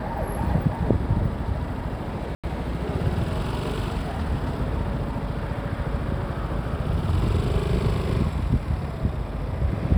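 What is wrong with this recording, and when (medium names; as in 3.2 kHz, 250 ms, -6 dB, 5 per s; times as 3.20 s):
2.35–2.44 s: dropout 86 ms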